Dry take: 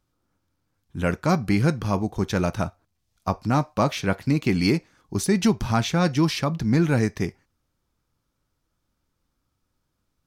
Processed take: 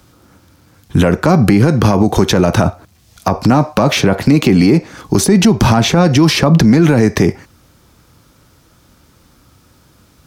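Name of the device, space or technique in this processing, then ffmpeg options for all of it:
mastering chain: -filter_complex "[0:a]highpass=55,equalizer=f=1k:t=o:w=0.77:g=-1.5,acrossover=split=210|1100[a][b][c];[a]acompressor=threshold=-35dB:ratio=4[d];[b]acompressor=threshold=-26dB:ratio=4[e];[c]acompressor=threshold=-43dB:ratio=4[f];[d][e][f]amix=inputs=3:normalize=0,acompressor=threshold=-29dB:ratio=2,asoftclip=type=tanh:threshold=-17.5dB,alimiter=level_in=29dB:limit=-1dB:release=50:level=0:latency=1,volume=-1dB"

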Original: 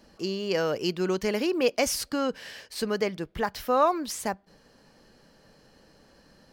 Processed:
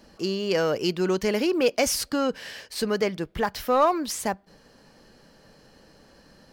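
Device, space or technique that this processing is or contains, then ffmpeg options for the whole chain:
parallel distortion: -filter_complex "[0:a]asplit=2[a][b];[b]asoftclip=type=hard:threshold=-24dB,volume=-6.5dB[c];[a][c]amix=inputs=2:normalize=0"

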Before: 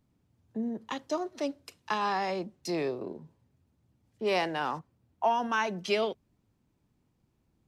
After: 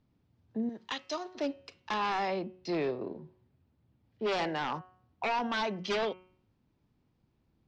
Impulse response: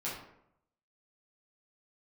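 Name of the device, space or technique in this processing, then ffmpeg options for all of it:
synthesiser wavefolder: -filter_complex "[0:a]bandreject=f=183.9:t=h:w=4,bandreject=f=367.8:t=h:w=4,bandreject=f=551.7:t=h:w=4,bandreject=f=735.6:t=h:w=4,bandreject=f=919.5:t=h:w=4,bandreject=f=1.1034k:t=h:w=4,bandreject=f=1.2873k:t=h:w=4,bandreject=f=1.4712k:t=h:w=4,bandreject=f=1.6551k:t=h:w=4,bandreject=f=1.839k:t=h:w=4,bandreject=f=2.0229k:t=h:w=4,bandreject=f=2.2068k:t=h:w=4,bandreject=f=2.3907k:t=h:w=4,bandreject=f=2.5746k:t=h:w=4,bandreject=f=2.7585k:t=h:w=4,bandreject=f=2.9424k:t=h:w=4,bandreject=f=3.1263k:t=h:w=4,asettb=1/sr,asplit=3[a][b][c];[a]atrim=end=0.694[d];[b]atrim=start=0.69:end=1.35,asetpts=PTS-STARTPTS,afade=t=in:d=0.004:c=qsin,afade=t=out:st=0.656:d=0.004:c=qsin,tiltshelf=f=1.3k:g=-8.5[e];[c]atrim=start=1.346[f];[d][e]acrossfade=d=0.004:c1=hsin:c2=qsin[g];[g][f]acrossfade=d=0.004:c1=qsin:c2=hsin,asettb=1/sr,asplit=3[h][i][j];[h]atrim=end=2.284[k];[i]atrim=start=2.28:end=4.27,asetpts=PTS-STARTPTS,afade=t=in:d=0.004:c=qsin,afade=t=out:st=1.986:d=0.004:c=qsin,lowpass=4.7k[l];[j]atrim=start=4.266[m];[k][l]acrossfade=d=0.004:c1=hsin:c2=qsin[n];[n][m]acrossfade=d=0.004:c1=qsin:c2=hsin,aeval=exprs='0.0562*(abs(mod(val(0)/0.0562+3,4)-2)-1)':c=same,lowpass=f=5.2k:w=0.5412,lowpass=f=5.2k:w=1.3066"

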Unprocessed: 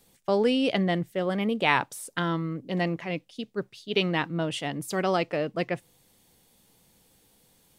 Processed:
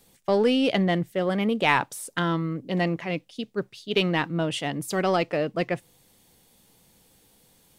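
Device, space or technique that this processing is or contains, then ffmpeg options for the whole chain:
parallel distortion: -filter_complex "[0:a]asplit=2[a][b];[b]asoftclip=type=hard:threshold=-21.5dB,volume=-9dB[c];[a][c]amix=inputs=2:normalize=0"

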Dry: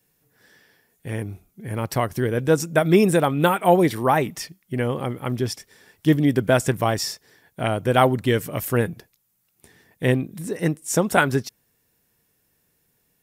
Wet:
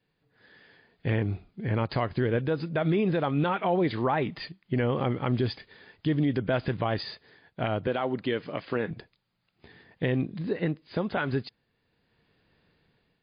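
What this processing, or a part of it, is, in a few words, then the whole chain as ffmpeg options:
low-bitrate web radio: -filter_complex "[0:a]asettb=1/sr,asplit=3[a][b][c];[a]atrim=end=7.874[d];[b]atrim=start=7.87:end=8.91,asetpts=PTS-STARTPTS,afade=t=in:d=0.004:c=qsin,afade=t=out:st=1.036:d=0.004:c=qsin,highpass=200[e];[c]atrim=start=8.906[f];[d][e]acrossfade=d=0.004:c1=hsin:c2=qsin[g];[g][f]acrossfade=d=0.004:c1=qsin:c2=hsin,dynaudnorm=f=280:g=5:m=10dB,alimiter=limit=-12.5dB:level=0:latency=1:release=104,volume=-4dB" -ar 11025 -c:a libmp3lame -b:a 32k

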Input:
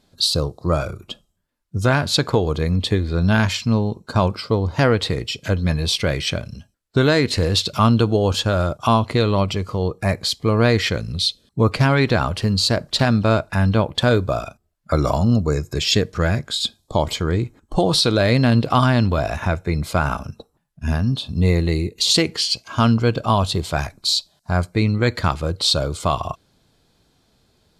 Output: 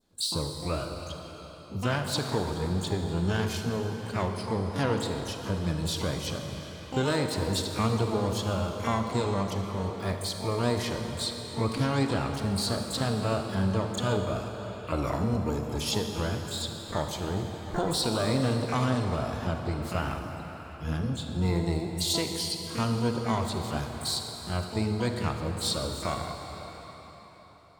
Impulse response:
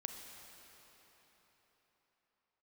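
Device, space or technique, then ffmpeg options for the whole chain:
shimmer-style reverb: -filter_complex "[0:a]asplit=2[a][b];[b]asetrate=88200,aresample=44100,atempo=0.5,volume=-7dB[c];[a][c]amix=inputs=2:normalize=0[d];[1:a]atrim=start_sample=2205[e];[d][e]afir=irnorm=-1:irlink=0,adynamicequalizer=threshold=0.0141:dfrequency=2200:dqfactor=1.1:tfrequency=2200:tqfactor=1.1:attack=5:release=100:ratio=0.375:range=3:mode=cutabove:tftype=bell,volume=-8.5dB"

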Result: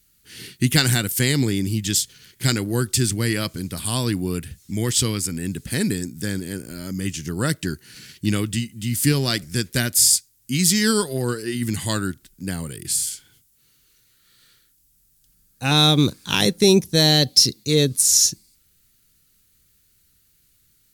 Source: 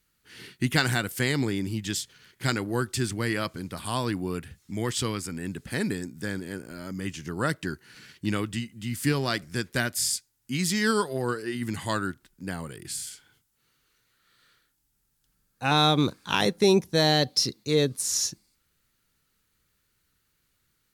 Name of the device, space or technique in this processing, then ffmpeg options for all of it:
smiley-face EQ: -af "lowshelf=f=140:g=3.5,equalizer=f=1k:t=o:w=2:g=-8.5,highshelf=f=5k:g=8,volume=6.5dB"

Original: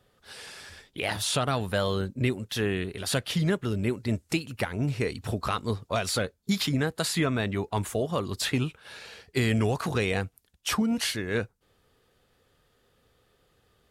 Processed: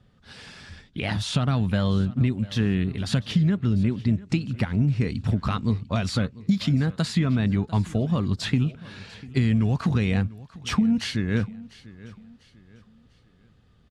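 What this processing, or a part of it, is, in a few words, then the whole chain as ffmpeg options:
jukebox: -filter_complex "[0:a]lowpass=5.7k,lowshelf=f=300:t=q:w=1.5:g=9.5,acompressor=threshold=-18dB:ratio=5,asettb=1/sr,asplit=3[a][b][c];[a]atrim=end=3.404[d];[b]atrim=start=3.4:end=4.57,asetpts=PTS-STARTPTS,afade=t=in:d=0.004:c=qsin,afade=t=out:st=1.166:d=0.004:c=qsin,lowpass=8.9k[e];[c]atrim=start=4.566[f];[d][e]acrossfade=d=0.004:c1=hsin:c2=qsin[g];[g][f]acrossfade=d=0.004:c1=qsin:c2=hsin,aecho=1:1:696|1392|2088:0.106|0.0392|0.0145"

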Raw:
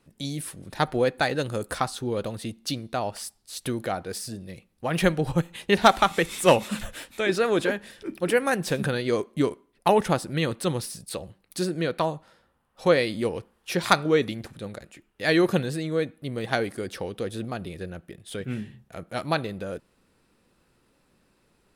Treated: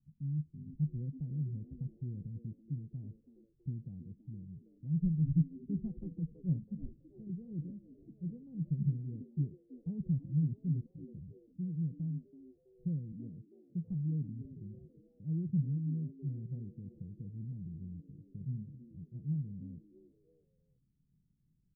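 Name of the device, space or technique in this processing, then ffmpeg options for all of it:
the neighbour's flat through the wall: -filter_complex "[0:a]asettb=1/sr,asplit=3[a][b][c];[a]atrim=end=13.124[d];[b]atrim=start=13.12:end=13.88,asetpts=PTS-STARTPTS,afade=t=in:d=0.004:c=qsin,afade=t=out:st=0.756:d=0.004:c=qsin,highpass=150[e];[c]atrim=start=13.876[f];[d][e]acrossfade=d=0.004:c1=hsin:c2=qsin[g];[g][f]acrossfade=d=0.004:c1=qsin:c2=hsin,lowpass=f=180:w=0.5412,lowpass=f=180:w=1.3066,equalizer=f=150:t=o:w=0.46:g=8,asplit=4[h][i][j][k];[i]adelay=327,afreqshift=110,volume=-19dB[l];[j]adelay=654,afreqshift=220,volume=-28.9dB[m];[k]adelay=981,afreqshift=330,volume=-38.8dB[n];[h][l][m][n]amix=inputs=4:normalize=0,volume=-6.5dB"

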